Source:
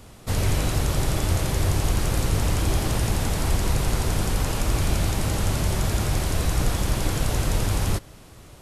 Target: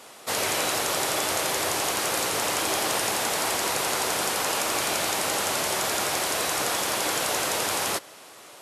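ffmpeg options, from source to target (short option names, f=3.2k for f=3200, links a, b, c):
-af "highpass=530,acontrast=45,afftfilt=real='re*gte(hypot(re,im),0.00141)':imag='im*gte(hypot(re,im),0.00141)':win_size=1024:overlap=0.75"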